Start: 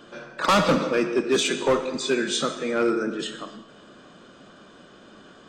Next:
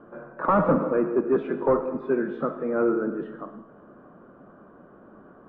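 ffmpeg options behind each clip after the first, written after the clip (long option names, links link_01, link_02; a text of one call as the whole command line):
ffmpeg -i in.wav -af "lowpass=frequency=1300:width=0.5412,lowpass=frequency=1300:width=1.3066" out.wav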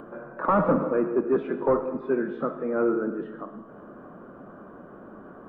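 ffmpeg -i in.wav -filter_complex "[0:a]asplit=2[link_01][link_02];[link_02]acompressor=mode=upward:threshold=-29dB:ratio=2.5,volume=-1dB[link_03];[link_01][link_03]amix=inputs=2:normalize=0,bandreject=frequency=50:width_type=h:width=6,bandreject=frequency=100:width_type=h:width=6,bandreject=frequency=150:width_type=h:width=6,volume=-6.5dB" out.wav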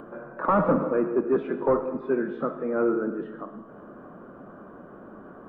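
ffmpeg -i in.wav -af anull out.wav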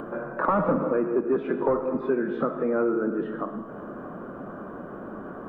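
ffmpeg -i in.wav -af "acompressor=threshold=-30dB:ratio=3,volume=7dB" out.wav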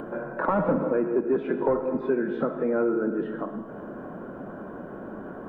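ffmpeg -i in.wav -af "bandreject=frequency=1200:width=6.3" out.wav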